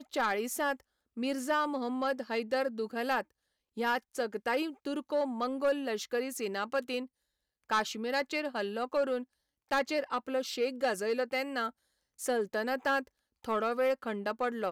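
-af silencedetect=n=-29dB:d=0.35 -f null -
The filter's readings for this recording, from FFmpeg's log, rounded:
silence_start: 0.73
silence_end: 1.22 | silence_duration: 0.49
silence_start: 3.21
silence_end: 3.79 | silence_duration: 0.58
silence_start: 6.99
silence_end: 7.71 | silence_duration: 0.72
silence_start: 9.18
silence_end: 9.72 | silence_duration: 0.54
silence_start: 11.67
silence_end: 12.24 | silence_duration: 0.57
silence_start: 12.99
silence_end: 13.48 | silence_duration: 0.49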